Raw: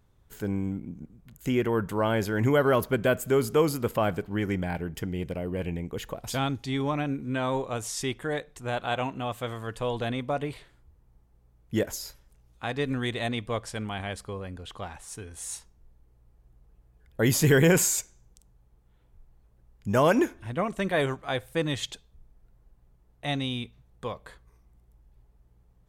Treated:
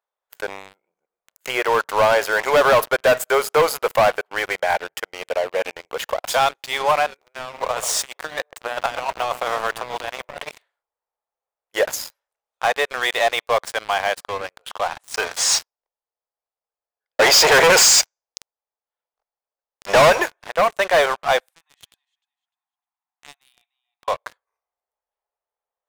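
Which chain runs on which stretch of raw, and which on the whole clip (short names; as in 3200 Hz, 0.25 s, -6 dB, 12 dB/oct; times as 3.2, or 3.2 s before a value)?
7.21–10.49 G.711 law mismatch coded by A + negative-ratio compressor -35 dBFS, ratio -0.5 + analogue delay 0.129 s, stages 1024, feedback 46%, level -10 dB
15.14–20.1 bell 5000 Hz +12 dB 0.36 oct + sample leveller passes 3 + LPF 7200 Hz 24 dB/oct
21.5–24.08 compressor 2.5:1, threshold -50 dBFS + rippled Chebyshev high-pass 720 Hz, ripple 3 dB + feedback echo 0.301 s, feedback 30%, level -13.5 dB
whole clip: inverse Chebyshev high-pass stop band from 280 Hz, stop band 40 dB; bell 13000 Hz -9 dB 2.9 oct; sample leveller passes 5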